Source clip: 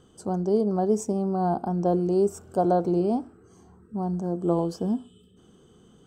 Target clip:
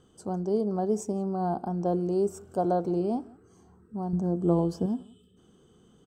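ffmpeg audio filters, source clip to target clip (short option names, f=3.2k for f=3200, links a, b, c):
-filter_complex "[0:a]asettb=1/sr,asplit=3[a][b][c];[a]atrim=end=4.134[d];[b]atrim=start=4.13:end=4.86,asetpts=PTS-STARTPTS,afade=t=in:d=0.004:c=qsin,afade=t=out:st=0.726:d=0.004:c=qsin,lowshelf=f=290:g=9[e];[c]atrim=start=4.856[f];[d][e]acrossfade=d=0.004:c1=hsin:c2=qsin[g];[g][f]acrossfade=d=0.004:c1=qsin:c2=hsin,asplit=2[h][i];[i]adelay=174.9,volume=-25dB,highshelf=f=4k:g=-3.94[j];[h][j]amix=inputs=2:normalize=0,volume=-4dB"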